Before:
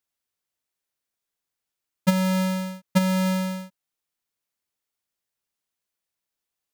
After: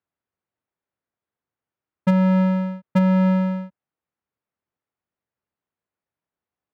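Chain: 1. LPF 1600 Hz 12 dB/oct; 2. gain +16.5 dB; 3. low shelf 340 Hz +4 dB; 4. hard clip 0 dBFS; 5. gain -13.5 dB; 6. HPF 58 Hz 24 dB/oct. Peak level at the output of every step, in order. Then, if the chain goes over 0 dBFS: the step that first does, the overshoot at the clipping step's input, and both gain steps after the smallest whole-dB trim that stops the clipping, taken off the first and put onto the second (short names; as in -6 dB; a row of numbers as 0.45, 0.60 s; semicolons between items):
-12.5, +4.0, +7.5, 0.0, -13.5, -7.5 dBFS; step 2, 7.5 dB; step 2 +8.5 dB, step 5 -5.5 dB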